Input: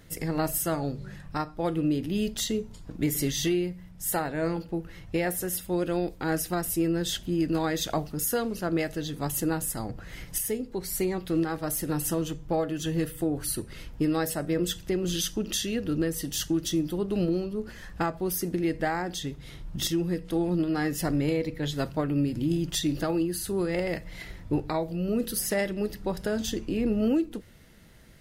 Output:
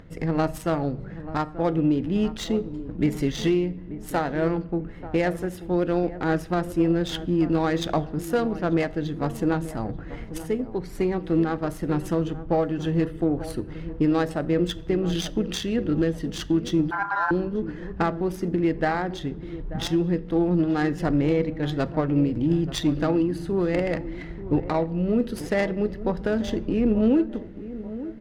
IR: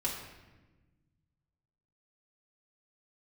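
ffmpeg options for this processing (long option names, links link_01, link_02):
-filter_complex "[0:a]highshelf=frequency=11000:gain=9,asplit=2[link_01][link_02];[link_02]adelay=886,lowpass=frequency=1500:poles=1,volume=-13.5dB,asplit=2[link_03][link_04];[link_04]adelay=886,lowpass=frequency=1500:poles=1,volume=0.45,asplit=2[link_05][link_06];[link_06]adelay=886,lowpass=frequency=1500:poles=1,volume=0.45,asplit=2[link_07][link_08];[link_08]adelay=886,lowpass=frequency=1500:poles=1,volume=0.45[link_09];[link_01][link_03][link_05][link_07][link_09]amix=inputs=5:normalize=0,adynamicsmooth=sensitivity=2:basefreq=1700,asettb=1/sr,asplit=3[link_10][link_11][link_12];[link_10]atrim=end=16.914[link_13];[link_11]atrim=start=16.91:end=17.31,asetpts=PTS-STARTPTS,afade=type=in:duration=0.004:curve=qsin,afade=type=out:start_time=0.396:duration=0.004:curve=qsin,aeval=exprs='val(0)*sin(2*PI*1200*n/s)':channel_layout=same[link_14];[link_12]atrim=start=17.306[link_15];[link_13][link_14]acrossfade=duration=0.004:curve1=hsin:curve2=qsin[link_16];[link_16][link_15]acrossfade=duration=0.004:curve1=qsin:curve2=hsin,acompressor=mode=upward:threshold=-49dB:ratio=2.5,asplit=2[link_17][link_18];[1:a]atrim=start_sample=2205[link_19];[link_18][link_19]afir=irnorm=-1:irlink=0,volume=-21dB[link_20];[link_17][link_20]amix=inputs=2:normalize=0,volume=4dB"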